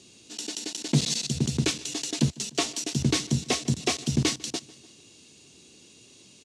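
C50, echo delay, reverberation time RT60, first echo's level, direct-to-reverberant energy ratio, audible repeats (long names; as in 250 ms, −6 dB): no reverb audible, 149 ms, no reverb audible, −22.5 dB, no reverb audible, 3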